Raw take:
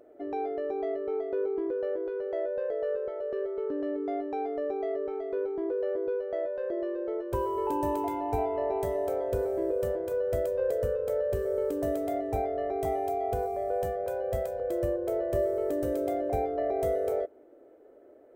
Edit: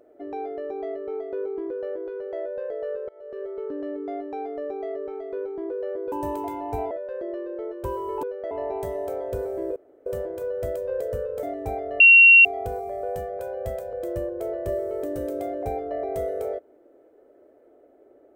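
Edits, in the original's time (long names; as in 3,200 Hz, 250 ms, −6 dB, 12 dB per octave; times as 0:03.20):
0:03.09–0:03.50: fade in, from −21.5 dB
0:06.12–0:06.40: swap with 0:07.72–0:08.51
0:09.76: splice in room tone 0.30 s
0:11.13–0:12.10: remove
0:12.67–0:13.12: beep over 2,740 Hz −8 dBFS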